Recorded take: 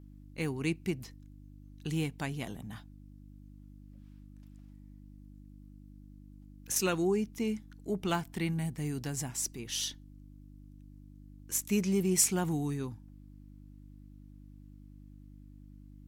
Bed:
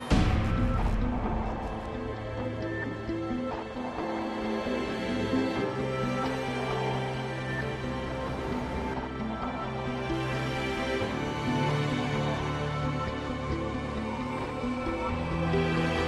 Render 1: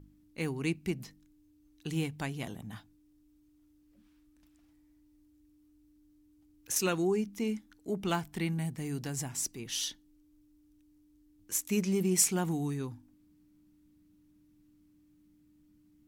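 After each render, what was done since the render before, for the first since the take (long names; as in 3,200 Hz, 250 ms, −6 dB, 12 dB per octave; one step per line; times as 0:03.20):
hum removal 50 Hz, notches 5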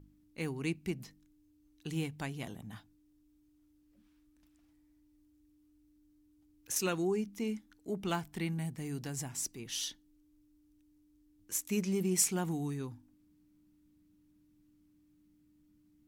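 level −3 dB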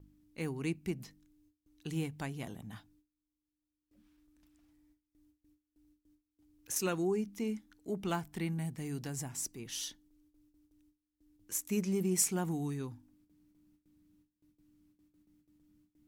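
noise gate with hold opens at −60 dBFS
dynamic equaliser 3,400 Hz, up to −4 dB, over −51 dBFS, Q 0.82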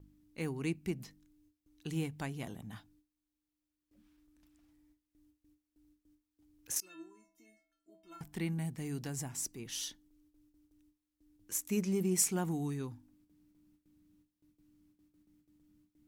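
0:06.80–0:08.21: stiff-string resonator 320 Hz, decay 0.58 s, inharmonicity 0.008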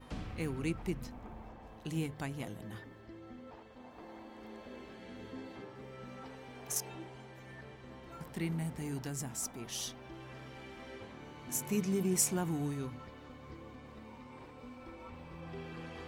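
mix in bed −18.5 dB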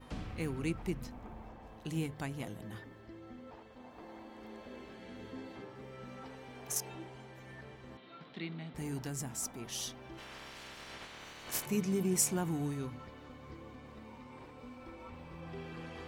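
0:07.97–0:08.75: loudspeaker in its box 250–3,900 Hz, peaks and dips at 360 Hz −4 dB, 520 Hz −6 dB, 900 Hz −9 dB, 1,700 Hz −4 dB, 3,800 Hz +10 dB
0:10.17–0:11.65: ceiling on every frequency bin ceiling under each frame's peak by 24 dB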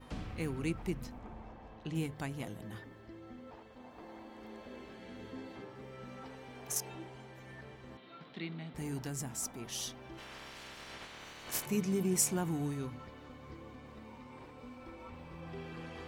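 0:01.18–0:01.94: low-pass filter 10,000 Hz → 3,900 Hz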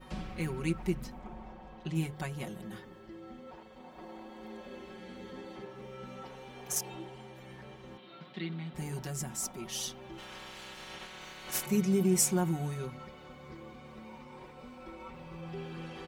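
comb filter 5.4 ms, depth 91%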